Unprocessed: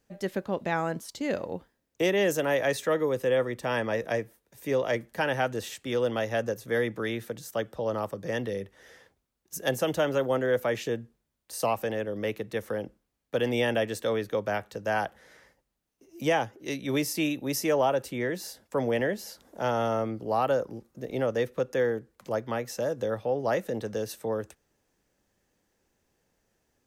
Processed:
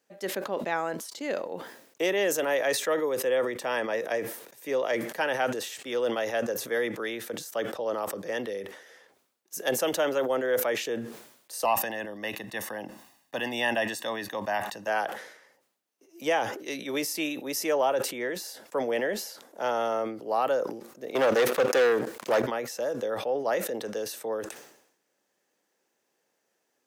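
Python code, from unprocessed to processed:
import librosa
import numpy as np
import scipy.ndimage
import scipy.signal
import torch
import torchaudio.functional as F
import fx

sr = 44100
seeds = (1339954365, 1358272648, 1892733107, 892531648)

y = fx.comb(x, sr, ms=1.1, depth=0.71, at=(11.65, 14.88))
y = fx.leveller(y, sr, passes=3, at=(21.15, 22.42))
y = scipy.signal.sosfilt(scipy.signal.butter(2, 350.0, 'highpass', fs=sr, output='sos'), y)
y = fx.sustainer(y, sr, db_per_s=75.0)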